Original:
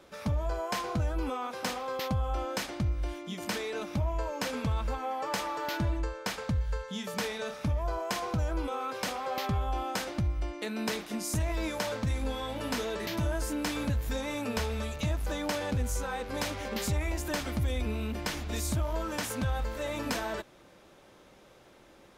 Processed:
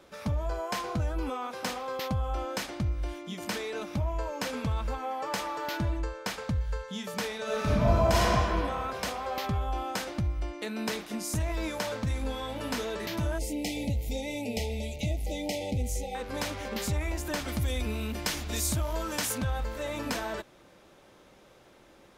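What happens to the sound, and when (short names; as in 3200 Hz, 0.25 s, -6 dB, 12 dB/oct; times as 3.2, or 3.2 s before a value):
7.43–8.29 reverb throw, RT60 2.5 s, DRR -8.5 dB
13.38–16.15 brick-wall FIR band-stop 880–1900 Hz
17.48–19.38 high shelf 3200 Hz +7.5 dB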